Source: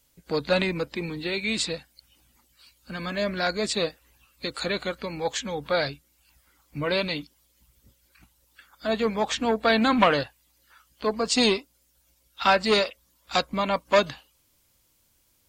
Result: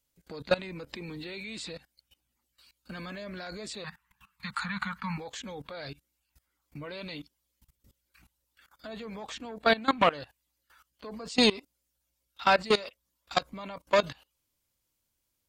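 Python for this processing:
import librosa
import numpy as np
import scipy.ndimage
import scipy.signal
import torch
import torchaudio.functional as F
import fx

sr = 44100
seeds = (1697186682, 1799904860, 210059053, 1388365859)

y = fx.level_steps(x, sr, step_db=20)
y = fx.curve_eq(y, sr, hz=(100.0, 200.0, 310.0, 630.0, 910.0, 1800.0, 2600.0, 4400.0), db=(0, 13, -27, -14, 13, 11, 4, -1), at=(3.84, 5.18))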